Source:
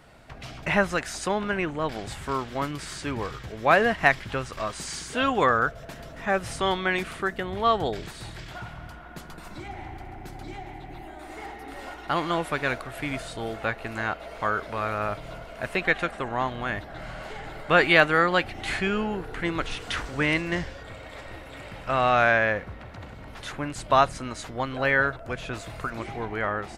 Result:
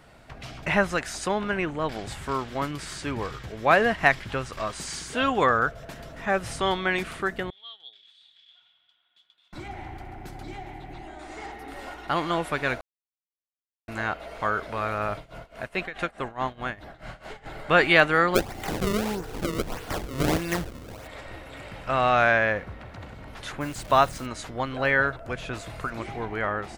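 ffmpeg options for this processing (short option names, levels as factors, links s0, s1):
-filter_complex "[0:a]asettb=1/sr,asplit=3[s0][s1][s2];[s0]atrim=end=7.504[s3];[s1]atrim=start=7.5:end=9.53,asetpts=PTS-STARTPTS,afade=t=in:d=0.004:c=qsin,afade=t=out:st=2.026:d=0.004:c=qsin,bandpass=f=3400:t=q:w=15[s4];[s2]atrim=start=9.526[s5];[s3][s4]acrossfade=d=0.004:c1=hsin:c2=qsin[s6];[s6][s5]acrossfade=d=0.004:c1=qsin:c2=hsin,asettb=1/sr,asplit=3[s7][s8][s9];[s7]atrim=end=10.934[s10];[s8]atrim=start=10.93:end=11.52,asetpts=PTS-STARTPTS,afade=t=in:d=0.004:c=qsin,afade=t=out:st=0.586:d=0.004:c=qsin,lowpass=f=7000:t=q:w=1.5[s11];[s9]atrim=start=11.516[s12];[s10][s11]acrossfade=d=0.004:c1=hsin:c2=qsin[s13];[s13][s12]acrossfade=d=0.004:c1=qsin:c2=hsin,asettb=1/sr,asplit=3[s14][s15][s16];[s14]atrim=end=15.174[s17];[s15]atrim=start=15.17:end=17.46,asetpts=PTS-STARTPTS,afade=t=in:d=0.004:c=qsin,afade=t=out:st=2.286:d=0.004:c=qsin,tremolo=f=4.7:d=0.88[s18];[s16]atrim=start=17.456[s19];[s17][s18]acrossfade=d=0.004:c1=hsin:c2=qsin[s20];[s20][s19]acrossfade=d=0.004:c1=qsin:c2=hsin,asplit=3[s21][s22][s23];[s21]afade=t=out:st=18.34:d=0.02[s24];[s22]acrusher=samples=31:mix=1:aa=0.000001:lfo=1:lforange=49.6:lforate=1.6,afade=t=in:st=18.34:d=0.02,afade=t=out:st=21.06:d=0.02[s25];[s23]afade=t=in:st=21.06:d=0.02[s26];[s24][s25][s26]amix=inputs=3:normalize=0,asplit=3[s27][s28][s29];[s27]afade=t=out:st=23.6:d=0.02[s30];[s28]acrusher=bits=8:dc=4:mix=0:aa=0.000001,afade=t=in:st=23.6:d=0.02,afade=t=out:st=24.25:d=0.02[s31];[s29]afade=t=in:st=24.25:d=0.02[s32];[s30][s31][s32]amix=inputs=3:normalize=0,asplit=3[s33][s34][s35];[s33]atrim=end=12.81,asetpts=PTS-STARTPTS,afade=t=out:st=12.806:d=0.004:c=hsin[s36];[s34]atrim=start=12.81:end=13.88,asetpts=PTS-STARTPTS,volume=0[s37];[s35]atrim=start=13.88,asetpts=PTS-STARTPTS,afade=t=in:d=0.004:c=hsin[s38];[s36][s37][s38]concat=n=3:v=0:a=1"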